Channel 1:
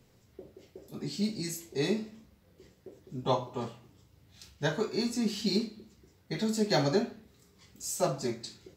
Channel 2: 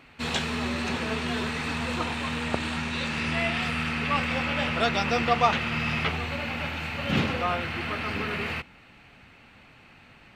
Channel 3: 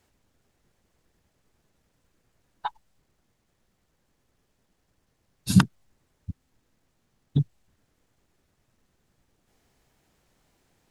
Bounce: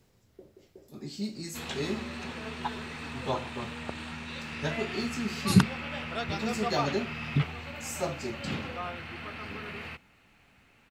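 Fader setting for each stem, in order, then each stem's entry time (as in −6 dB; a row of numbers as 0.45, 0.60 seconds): −3.5, −9.5, −3.5 decibels; 0.00, 1.35, 0.00 seconds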